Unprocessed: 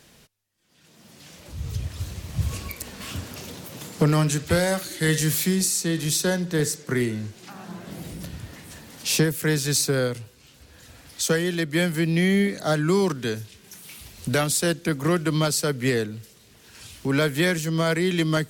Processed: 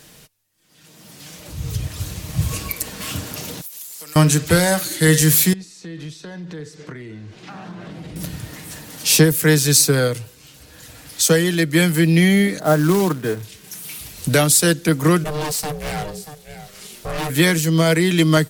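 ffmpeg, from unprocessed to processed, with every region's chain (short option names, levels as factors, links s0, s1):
-filter_complex "[0:a]asettb=1/sr,asplit=3[s0][s1][s2];[s0]atrim=end=3.614[s3];[s1]atrim=start=3.61:end=4.16,asetpts=PTS-STARTPTS,afade=t=in:d=0.004:c=qsin,afade=t=out:st=0.546:d=0.004:c=qsin,highpass=130,aderivative,acompressor=threshold=0.00891:ratio=6:attack=3.2:release=140:knee=1:detection=peak[s4];[s2]atrim=start=4.156[s5];[s3][s4]acrossfade=d=0.004:c1=hsin:c2=qsin[s6];[s6][s5]acrossfade=d=0.004:c1=qsin:c2=hsin,asettb=1/sr,asplit=3[s7][s8][s9];[s7]atrim=end=5.534[s10];[s8]atrim=start=5.53:end=8.16,asetpts=PTS-STARTPTS,afade=t=in:d=0.004:c=qsin,afade=t=out:st=2.626:d=0.004:c=qsin,acompressor=threshold=0.0158:ratio=12:attack=3.2:release=140:knee=1:detection=peak,lowpass=3600[s11];[s9]atrim=start=8.156[s12];[s10][s11]acrossfade=d=0.004:c1=hsin:c2=qsin[s13];[s13][s12]acrossfade=d=0.004:c1=qsin:c2=hsin,asettb=1/sr,asplit=3[s14][s15][s16];[s14]atrim=end=12.594[s17];[s15]atrim=start=12.59:end=13.43,asetpts=PTS-STARTPTS,afade=t=in:d=0.004:c=qsin,afade=t=out:st=0.836:d=0.004:c=qsin,lowpass=1500,lowshelf=f=83:g=-7.5,acrusher=bits=4:mode=log:mix=0:aa=0.000001[s18];[s16]atrim=start=13.426[s19];[s17][s18]acrossfade=d=0.004:c1=hsin:c2=qsin[s20];[s20][s19]acrossfade=d=0.004:c1=qsin:c2=hsin,asettb=1/sr,asplit=3[s21][s22][s23];[s21]atrim=end=15.244[s24];[s22]atrim=start=15.24:end=17.3,asetpts=PTS-STARTPTS,afade=t=in:d=0.004:c=qsin,afade=t=out:st=2.056:d=0.004:c=qsin,aecho=1:1:632:0.112,atrim=end_sample=90846,aeval=exprs='val(0)*sin(2*PI*300*n/s)':c=same,asoftclip=type=hard:threshold=0.0355[s25];[s23]atrim=start=17.296[s26];[s24][s25]acrossfade=d=0.004:c1=hsin:c2=qsin[s27];[s27][s26]acrossfade=d=0.004:c1=qsin:c2=hsin,equalizer=f=14000:w=0.43:g=6,aecho=1:1:6.5:0.36,volume=1.88"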